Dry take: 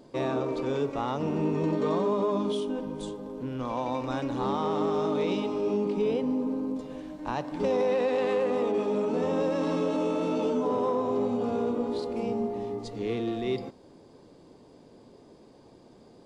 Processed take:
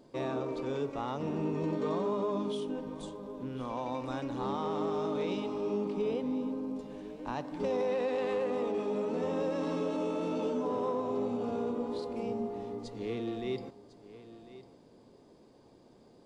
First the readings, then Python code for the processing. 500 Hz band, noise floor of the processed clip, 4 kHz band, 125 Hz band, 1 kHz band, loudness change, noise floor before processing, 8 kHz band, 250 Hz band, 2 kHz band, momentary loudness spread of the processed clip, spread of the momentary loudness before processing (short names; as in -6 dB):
-5.5 dB, -59 dBFS, -5.5 dB, -5.5 dB, -5.5 dB, -5.5 dB, -54 dBFS, n/a, -5.5 dB, -5.5 dB, 10 LU, 8 LU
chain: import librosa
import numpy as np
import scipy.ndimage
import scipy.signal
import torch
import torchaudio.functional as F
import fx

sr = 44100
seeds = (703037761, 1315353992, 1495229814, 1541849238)

y = x + 10.0 ** (-16.0 / 20.0) * np.pad(x, (int(1050 * sr / 1000.0), 0))[:len(x)]
y = y * 10.0 ** (-5.5 / 20.0)